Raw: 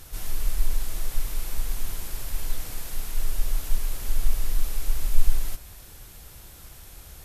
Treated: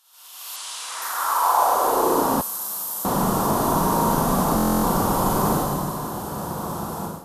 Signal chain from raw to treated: hum notches 60/120/180 Hz; Schroeder reverb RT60 2 s, combs from 33 ms, DRR -7.5 dB; high-pass sweep 2.9 kHz -> 180 Hz, 0.78–2.51 s; 0.56–1.02 s: steep low-pass 10 kHz 36 dB/octave; 2.41–3.05 s: differentiator; level rider gain up to 15 dB; resonant high shelf 1.5 kHz -13 dB, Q 3; buffer glitch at 4.56 s, samples 1024, times 11

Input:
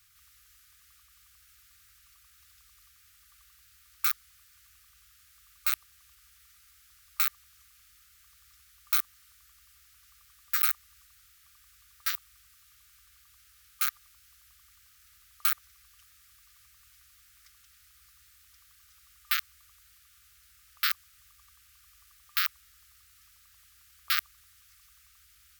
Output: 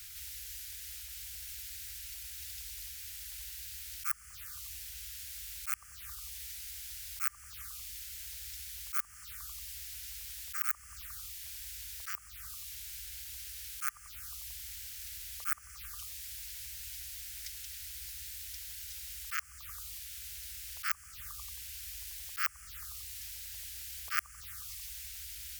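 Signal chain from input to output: touch-sensitive phaser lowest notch 160 Hz, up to 3.8 kHz, full sweep at -34 dBFS; slow attack 390 ms; trim +16 dB

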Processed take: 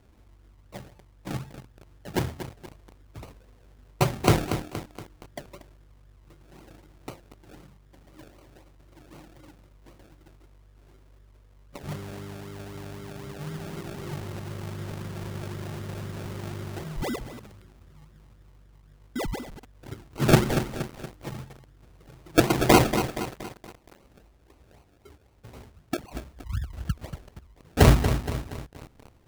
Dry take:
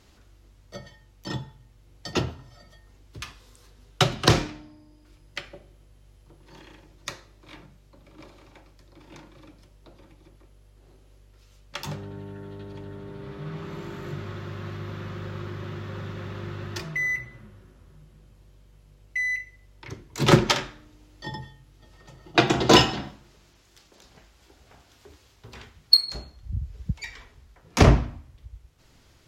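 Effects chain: Butterworth band-stop 3.5 kHz, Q 2.7; distance through air 330 m; decimation with a swept rate 35×, swing 60% 3.9 Hz; bit-crushed delay 235 ms, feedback 55%, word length 6-bit, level -9 dB

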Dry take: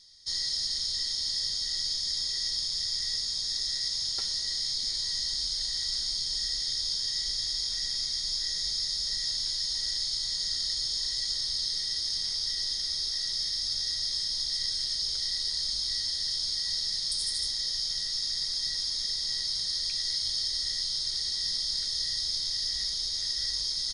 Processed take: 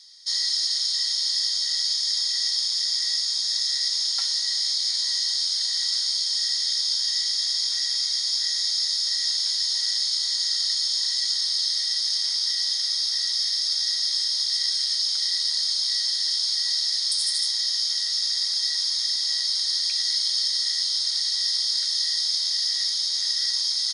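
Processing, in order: high-pass 780 Hz 24 dB/octave; trim +6.5 dB

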